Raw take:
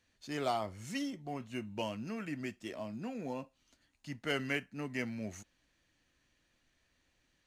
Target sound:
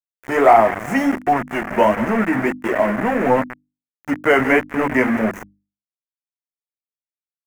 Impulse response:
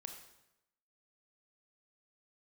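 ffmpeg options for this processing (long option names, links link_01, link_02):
-filter_complex "[0:a]highpass=210,acrossover=split=630[link_01][link_02];[link_01]asoftclip=type=tanh:threshold=-39.5dB[link_03];[link_03][link_02]amix=inputs=2:normalize=0,apsyclip=26dB,flanger=delay=8:depth=7.7:regen=26:speed=1.5:shape=sinusoidal,firequalizer=gain_entry='entry(910,0);entry(1700,-12);entry(6700,0)':delay=0.05:min_phase=1,aecho=1:1:182|364|546|728:0.15|0.0733|0.0359|0.0176,acontrast=62,aeval=exprs='val(0)*gte(abs(val(0)),0.126)':channel_layout=same,highshelf=frequency=2800:width_type=q:width=3:gain=-13.5,bandreject=frequency=50:width_type=h:width=6,bandreject=frequency=100:width_type=h:width=6,bandreject=frequency=150:width_type=h:width=6,bandreject=frequency=200:width_type=h:width=6,bandreject=frequency=250:width_type=h:width=6,bandreject=frequency=300:width_type=h:width=6,volume=-2.5dB"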